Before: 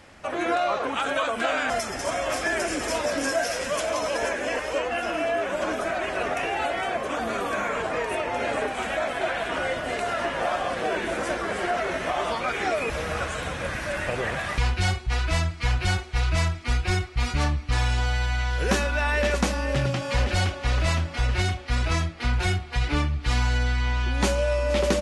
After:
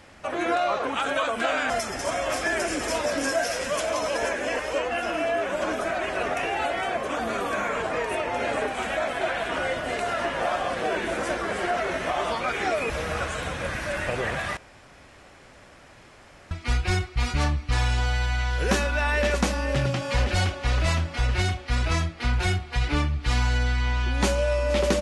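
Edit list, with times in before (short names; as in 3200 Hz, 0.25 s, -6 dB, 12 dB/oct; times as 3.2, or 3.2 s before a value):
14.57–16.51 room tone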